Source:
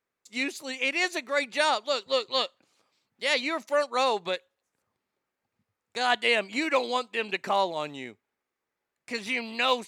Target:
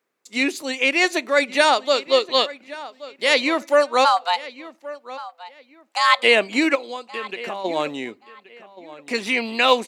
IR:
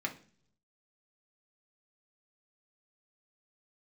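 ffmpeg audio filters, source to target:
-filter_complex "[0:a]highpass=270,lowshelf=f=370:g=9,asplit=3[a][b][c];[a]afade=t=out:st=4.04:d=0.02[d];[b]afreqshift=340,afade=t=in:st=4.04:d=0.02,afade=t=out:st=6.22:d=0.02[e];[c]afade=t=in:st=6.22:d=0.02[f];[d][e][f]amix=inputs=3:normalize=0,asplit=3[g][h][i];[g]afade=t=out:st=6.74:d=0.02[j];[h]acompressor=threshold=-35dB:ratio=8,afade=t=in:st=6.74:d=0.02,afade=t=out:st=7.64:d=0.02[k];[i]afade=t=in:st=7.64:d=0.02[l];[j][k][l]amix=inputs=3:normalize=0,asplit=2[m][n];[n]adelay=1126,lowpass=f=3.5k:p=1,volume=-17dB,asplit=2[o][p];[p]adelay=1126,lowpass=f=3.5k:p=1,volume=0.25[q];[m][o][q]amix=inputs=3:normalize=0,asplit=2[r][s];[1:a]atrim=start_sample=2205,asetrate=52920,aresample=44100[t];[s][t]afir=irnorm=-1:irlink=0,volume=-19dB[u];[r][u]amix=inputs=2:normalize=0,volume=6.5dB"

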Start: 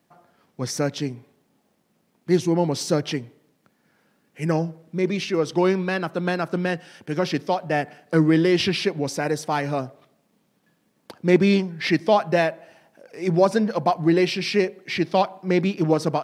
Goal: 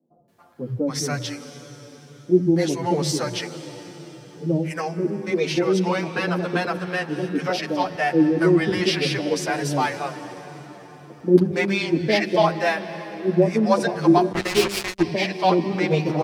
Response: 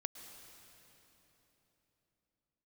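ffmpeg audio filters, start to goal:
-filter_complex "[0:a]acrossover=split=170|570[a][b][c];[a]adelay=90[d];[c]adelay=280[e];[d][b][e]amix=inputs=3:normalize=0,adynamicequalizer=threshold=0.0112:dfrequency=3100:dqfactor=1.3:tfrequency=3100:tqfactor=1.3:attack=5:release=100:ratio=0.375:range=1.5:mode=cutabove:tftype=bell,asplit=2[f][g];[1:a]atrim=start_sample=2205,asetrate=30870,aresample=44100[h];[g][h]afir=irnorm=-1:irlink=0,volume=0.5dB[i];[f][i]amix=inputs=2:normalize=0,asettb=1/sr,asplit=3[j][k][l];[j]atrim=end=14.324[m];[k]atrim=start=14.32:end=15.02,asetpts=PTS-STARTPTS,afade=t=in:d=0.004:c=qsin,afade=t=out:st=0.696:d=0.004:c=qsin,acrusher=bits=2:mix=0:aa=0.5[n];[l]atrim=start=15.016[o];[m][n]acrossfade=d=0.004:c1=hsin:c2=qsin[p];[p][o]acrossfade=d=0.004:c1=qsin:c2=hsin,bandreject=f=200:t=h:w=4,bandreject=f=400:t=h:w=4,bandreject=f=600:t=h:w=4,asplit=2[q][r];[r]adelay=9,afreqshift=-2[s];[q][s]amix=inputs=2:normalize=1"

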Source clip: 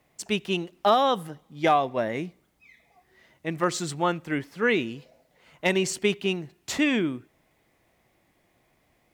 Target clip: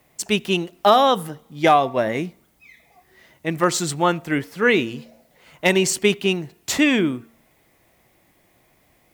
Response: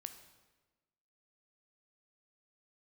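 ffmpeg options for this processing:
-af "highshelf=f=10k:g=9.5,bandreject=f=229.1:t=h:w=4,bandreject=f=458.2:t=h:w=4,bandreject=f=687.3:t=h:w=4,bandreject=f=916.4:t=h:w=4,bandreject=f=1.1455k:t=h:w=4,bandreject=f=1.3746k:t=h:w=4,volume=6dB"

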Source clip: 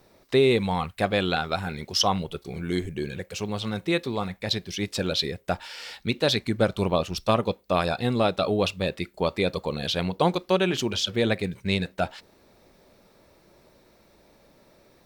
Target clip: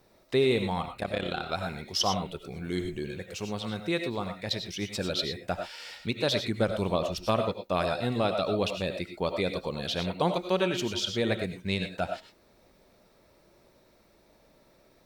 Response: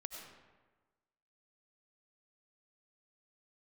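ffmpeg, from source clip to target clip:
-filter_complex "[0:a]asettb=1/sr,asplit=3[a][b][c];[a]atrim=end=0.824[d];[b]atrim=start=0.82:end=1.49,asetpts=PTS-STARTPTS,afade=t=in:d=0.004:c=qsin,afade=t=out:st=0.666:d=0.004:c=qsin,tremolo=f=34:d=0.857[e];[c]atrim=start=1.486[f];[d][e]acrossfade=d=0.004:c1=hsin:c2=qsin[g];[g][f]acrossfade=d=0.004:c1=qsin:c2=hsin[h];[1:a]atrim=start_sample=2205,afade=t=out:st=0.17:d=0.01,atrim=end_sample=7938[i];[h][i]afir=irnorm=-1:irlink=0"

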